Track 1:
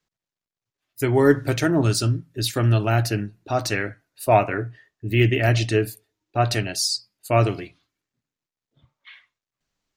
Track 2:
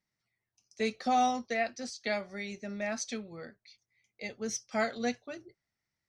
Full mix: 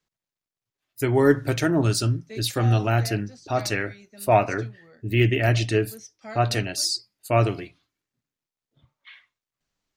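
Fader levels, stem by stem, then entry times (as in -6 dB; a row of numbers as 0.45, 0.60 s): -1.5, -8.5 dB; 0.00, 1.50 s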